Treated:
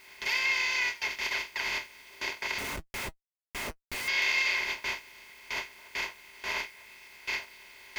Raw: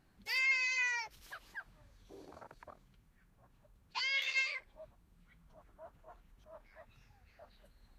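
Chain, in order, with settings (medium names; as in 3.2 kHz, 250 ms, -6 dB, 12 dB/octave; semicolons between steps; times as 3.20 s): spectral levelling over time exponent 0.2; recorder AGC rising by 57 dB/s; peaking EQ 390 Hz +7.5 dB 0.35 oct; feedback echo behind a high-pass 287 ms, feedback 55%, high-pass 2.5 kHz, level -20 dB; gate with hold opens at -18 dBFS; word length cut 10-bit, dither triangular; 2.58–4.08 s: Schmitt trigger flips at -38 dBFS; comb of notches 160 Hz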